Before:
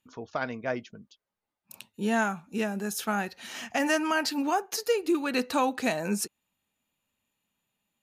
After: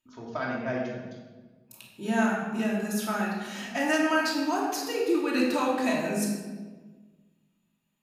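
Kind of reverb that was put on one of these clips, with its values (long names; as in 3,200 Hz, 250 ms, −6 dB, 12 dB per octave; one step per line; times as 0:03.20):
rectangular room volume 1,100 cubic metres, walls mixed, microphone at 2.8 metres
level −5.5 dB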